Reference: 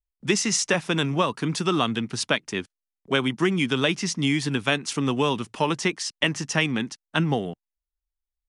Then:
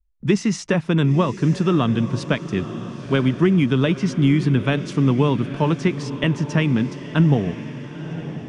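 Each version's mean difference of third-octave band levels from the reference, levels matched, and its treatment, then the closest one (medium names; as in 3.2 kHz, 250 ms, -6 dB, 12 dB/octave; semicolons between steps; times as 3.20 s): 7.0 dB: RIAA curve playback; band-stop 780 Hz, Q 12; on a send: echo that smears into a reverb 926 ms, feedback 55%, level -12.5 dB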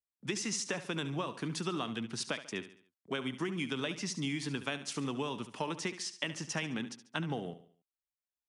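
4.0 dB: high-pass 110 Hz; compression 4:1, threshold -24 dBFS, peak gain reduction 7.5 dB; feedback delay 71 ms, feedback 42%, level -13 dB; trim -8.5 dB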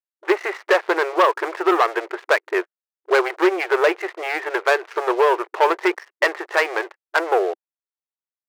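14.0 dB: steep low-pass 2 kHz 36 dB/octave; waveshaping leveller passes 3; brick-wall FIR high-pass 340 Hz; trim +2 dB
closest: second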